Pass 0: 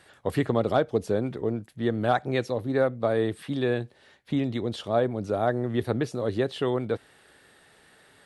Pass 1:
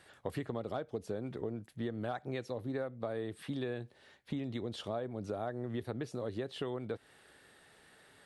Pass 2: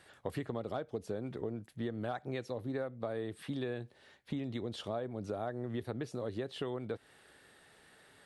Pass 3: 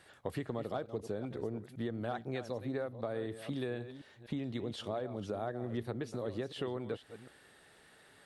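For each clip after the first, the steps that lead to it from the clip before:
compression, threshold -30 dBFS, peak gain reduction 12.5 dB; trim -4.5 dB
no audible change
chunks repeated in reverse 251 ms, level -11.5 dB

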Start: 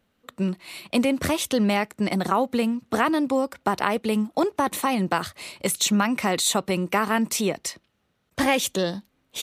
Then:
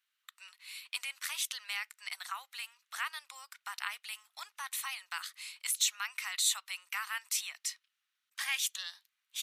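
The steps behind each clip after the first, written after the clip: Bessel high-pass 2 kHz, order 6; trim -5.5 dB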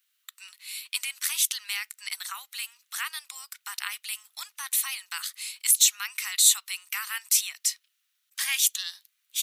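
tilt EQ +4 dB/octave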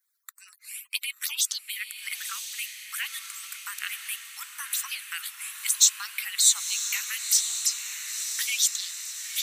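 harmonic-percussive separation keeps percussive; touch-sensitive phaser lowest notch 490 Hz, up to 2.5 kHz, full sweep at -23 dBFS; echo that smears into a reverb 999 ms, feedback 60%, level -7.5 dB; trim +3 dB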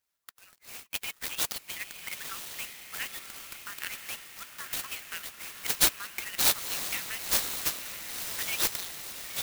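sampling jitter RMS 0.047 ms; trim -3.5 dB

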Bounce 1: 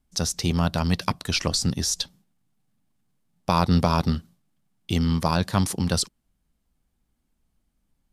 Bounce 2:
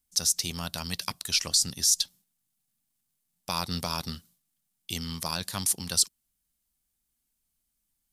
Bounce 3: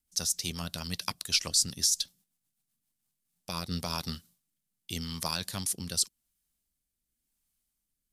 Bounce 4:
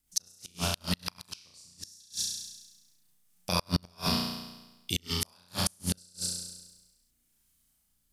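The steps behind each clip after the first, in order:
pre-emphasis filter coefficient 0.9; trim +5 dB
rotary cabinet horn 8 Hz, later 0.9 Hz, at 2.60 s
flutter echo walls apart 5.8 m, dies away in 1.1 s; inverted gate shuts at -17 dBFS, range -36 dB; trim +5 dB

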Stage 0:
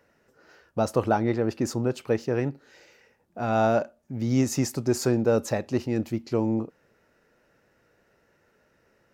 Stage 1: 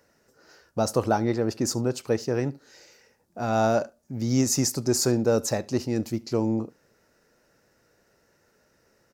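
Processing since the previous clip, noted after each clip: resonant high shelf 3.9 kHz +6.5 dB, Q 1.5; delay 73 ms -23.5 dB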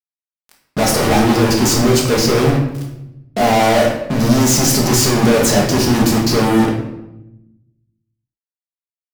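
fuzz box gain 49 dB, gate -44 dBFS; simulated room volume 310 m³, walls mixed, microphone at 1.4 m; trim -3 dB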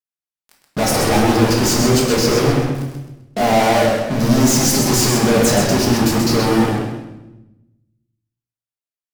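modulated delay 130 ms, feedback 34%, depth 95 cents, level -5 dB; trim -2.5 dB

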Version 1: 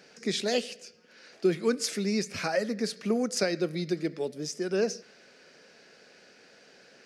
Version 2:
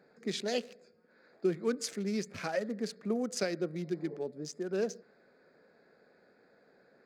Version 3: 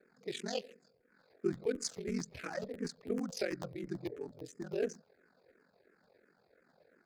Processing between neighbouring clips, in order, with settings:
local Wiener filter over 15 samples; spectral replace 3.87–4.14 s, 390–1100 Hz both; band-stop 5.4 kHz, Q 23; trim -5 dB
ring modulator 22 Hz; crackling interface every 0.11 s, samples 512, repeat, from 0.97 s; barber-pole phaser -2.9 Hz; trim +1.5 dB

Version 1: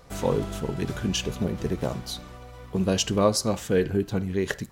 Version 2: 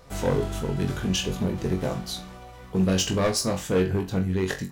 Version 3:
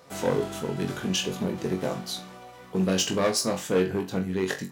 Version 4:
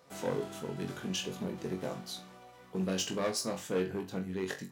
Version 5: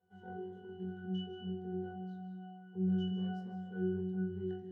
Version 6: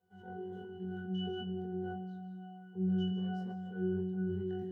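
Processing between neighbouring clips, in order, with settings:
overload inside the chain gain 19.5 dB; on a send: flutter echo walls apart 3.7 m, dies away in 0.23 s
high-pass 180 Hz 12 dB/octave
hum notches 50/100 Hz; trim -8.5 dB
pitch-class resonator F#, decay 0.57 s; on a send at -7 dB: reverberation RT60 0.90 s, pre-delay 115 ms; on the sum: trim +5.5 dB
decay stretcher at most 22 dB/s

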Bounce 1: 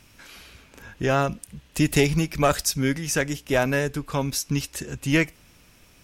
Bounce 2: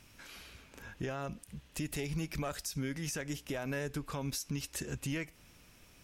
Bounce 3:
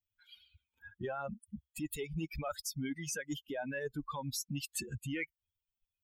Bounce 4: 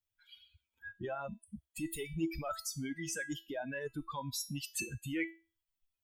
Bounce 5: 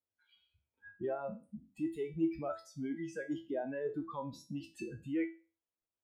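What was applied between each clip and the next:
compression, threshold -25 dBFS, peak gain reduction 11 dB; peak limiter -22 dBFS, peak gain reduction 7.5 dB; trim -5.5 dB
expander on every frequency bin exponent 3; reverse; compression, threshold -50 dBFS, peak gain reduction 14.5 dB; reverse; trim +14 dB
feedback comb 330 Hz, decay 0.31 s, harmonics all, mix 80%; trim +11 dB
spectral sustain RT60 0.32 s; band-pass filter 420 Hz, Q 1; trim +4 dB

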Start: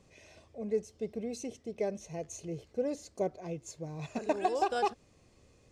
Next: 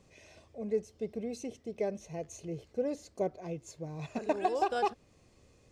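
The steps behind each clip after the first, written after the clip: dynamic bell 7.3 kHz, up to -4 dB, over -60 dBFS, Q 0.84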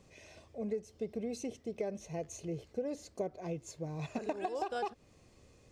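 compression 12:1, threshold -33 dBFS, peak gain reduction 10.5 dB; trim +1 dB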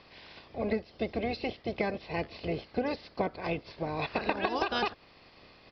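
spectral peaks clipped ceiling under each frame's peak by 19 dB; resampled via 11.025 kHz; trim +7 dB; MP3 56 kbps 48 kHz

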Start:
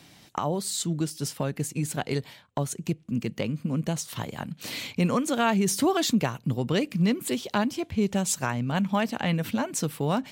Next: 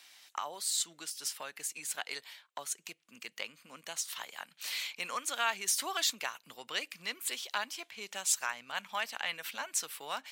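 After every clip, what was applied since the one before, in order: high-pass 1.3 kHz 12 dB/octave; trim -1.5 dB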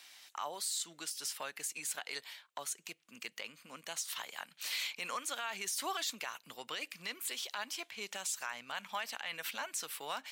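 peak limiter -28 dBFS, peak gain reduction 11.5 dB; trim +1 dB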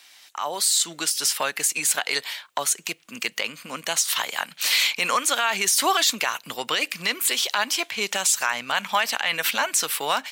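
level rider gain up to 12 dB; trim +5 dB

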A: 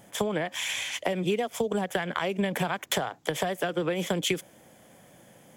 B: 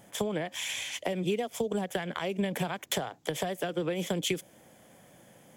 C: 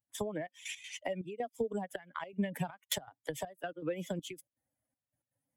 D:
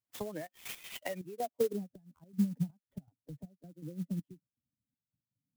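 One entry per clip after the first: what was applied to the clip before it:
dynamic bell 1.3 kHz, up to -5 dB, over -44 dBFS, Q 0.83; trim -2 dB
expander on every frequency bin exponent 2; trance gate ".xxxx..x" 161 bpm -12 dB
low-pass sweep 15 kHz -> 200 Hz, 0.53–1.91 s; sampling jitter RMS 0.044 ms; trim -3 dB

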